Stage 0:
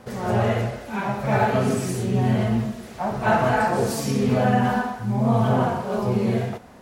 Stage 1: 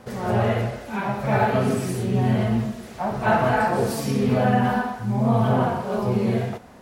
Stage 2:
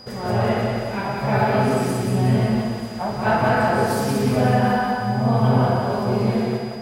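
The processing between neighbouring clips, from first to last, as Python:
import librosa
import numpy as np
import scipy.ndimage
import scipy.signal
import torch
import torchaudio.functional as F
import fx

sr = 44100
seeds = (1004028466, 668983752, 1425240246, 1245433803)

y1 = fx.dynamic_eq(x, sr, hz=6800.0, q=1.7, threshold_db=-49.0, ratio=4.0, max_db=-5)
y2 = y1 + 10.0 ** (-42.0 / 20.0) * np.sin(2.0 * np.pi * 4900.0 * np.arange(len(y1)) / sr)
y2 = fx.echo_split(y2, sr, split_hz=360.0, low_ms=133, high_ms=182, feedback_pct=52, wet_db=-3.5)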